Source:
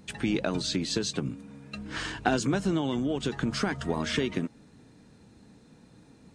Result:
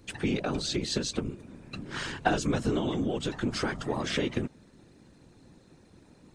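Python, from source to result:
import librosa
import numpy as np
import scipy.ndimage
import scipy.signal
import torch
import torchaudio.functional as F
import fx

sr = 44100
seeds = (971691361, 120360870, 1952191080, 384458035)

y = fx.whisperise(x, sr, seeds[0])
y = y * librosa.db_to_amplitude(-1.0)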